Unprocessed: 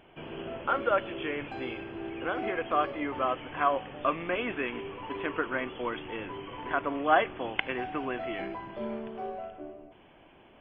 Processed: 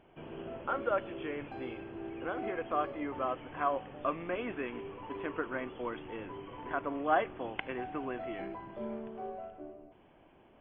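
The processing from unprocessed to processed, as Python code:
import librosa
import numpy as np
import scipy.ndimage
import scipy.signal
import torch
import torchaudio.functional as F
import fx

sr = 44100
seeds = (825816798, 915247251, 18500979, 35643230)

y = fx.high_shelf(x, sr, hz=2100.0, db=-10.0)
y = y * 10.0 ** (-3.5 / 20.0)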